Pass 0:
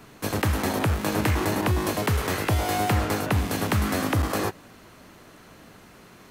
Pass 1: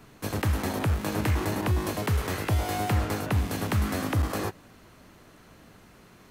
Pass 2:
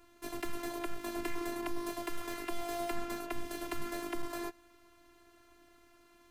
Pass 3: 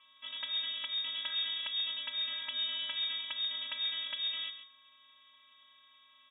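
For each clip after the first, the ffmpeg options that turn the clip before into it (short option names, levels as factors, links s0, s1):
-af "lowshelf=f=130:g=6,volume=0.562"
-af "afftfilt=real='hypot(re,im)*cos(PI*b)':imag='0':win_size=512:overlap=0.75,volume=0.531"
-af "aeval=exprs='val(0)+0.000447*sin(2*PI*2600*n/s)':c=same,aecho=1:1:137:0.282,lowpass=f=3100:t=q:w=0.5098,lowpass=f=3100:t=q:w=0.6013,lowpass=f=3100:t=q:w=0.9,lowpass=f=3100:t=q:w=2.563,afreqshift=-3700,volume=0.841"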